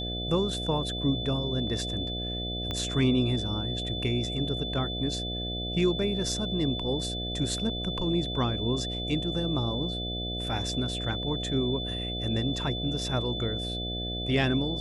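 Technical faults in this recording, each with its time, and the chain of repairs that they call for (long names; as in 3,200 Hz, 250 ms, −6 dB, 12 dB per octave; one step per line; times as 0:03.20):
mains buzz 60 Hz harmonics 12 −35 dBFS
whistle 3,500 Hz −34 dBFS
0:02.71: click −19 dBFS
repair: click removal
hum removal 60 Hz, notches 12
notch filter 3,500 Hz, Q 30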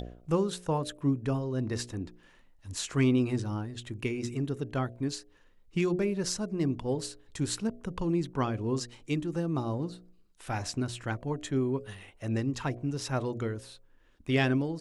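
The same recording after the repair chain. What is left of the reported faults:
0:02.71: click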